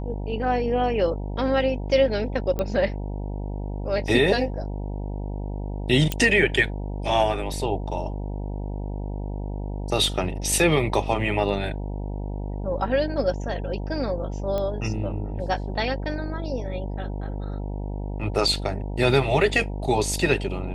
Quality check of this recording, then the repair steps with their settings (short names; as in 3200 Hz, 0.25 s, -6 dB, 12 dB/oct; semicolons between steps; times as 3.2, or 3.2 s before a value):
buzz 50 Hz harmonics 19 -30 dBFS
2.59 pop -14 dBFS
6.12 pop -9 dBFS
14.58 pop -16 dBFS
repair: de-click; de-hum 50 Hz, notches 19